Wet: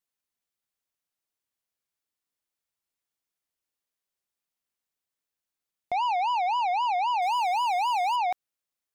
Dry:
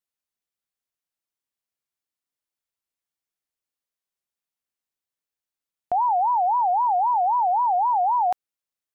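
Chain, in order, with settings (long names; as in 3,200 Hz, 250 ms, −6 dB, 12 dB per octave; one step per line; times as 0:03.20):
soft clipping −25 dBFS, distortion −14 dB
0:07.22–0:08.16: power curve on the samples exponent 0.7
level +1 dB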